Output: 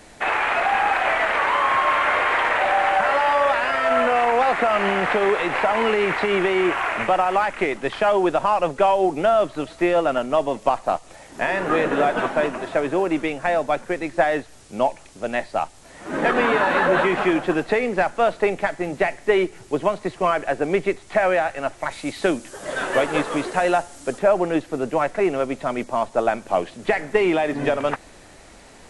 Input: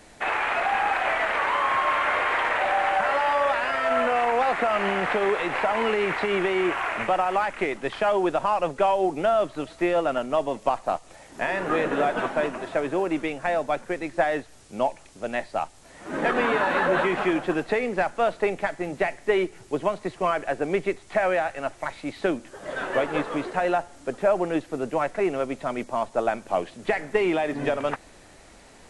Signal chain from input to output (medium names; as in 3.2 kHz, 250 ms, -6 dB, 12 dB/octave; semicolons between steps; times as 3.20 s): 21.91–24.19 s: treble shelf 5.2 kHz +11.5 dB; trim +4 dB